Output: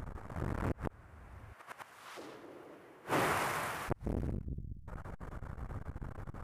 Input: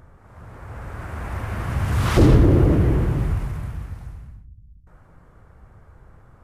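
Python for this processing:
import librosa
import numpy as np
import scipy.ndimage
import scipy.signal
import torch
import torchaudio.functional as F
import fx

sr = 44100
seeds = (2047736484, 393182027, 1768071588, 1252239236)

y = fx.highpass(x, sr, hz=610.0, slope=12, at=(1.52, 3.88), fade=0.02)
y = fx.gate_flip(y, sr, shuts_db=-25.0, range_db=-32)
y = fx.transformer_sat(y, sr, knee_hz=650.0)
y = y * 10.0 ** (8.5 / 20.0)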